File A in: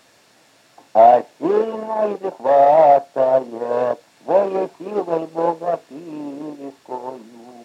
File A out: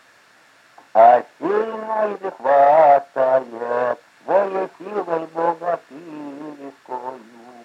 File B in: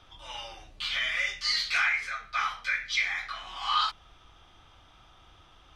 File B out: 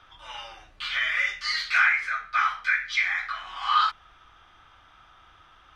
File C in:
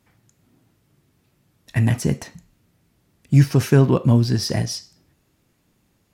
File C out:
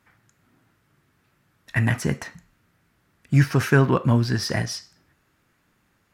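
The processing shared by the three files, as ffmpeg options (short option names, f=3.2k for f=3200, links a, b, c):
-af "equalizer=f=1.5k:w=0.99:g=12,volume=-4dB"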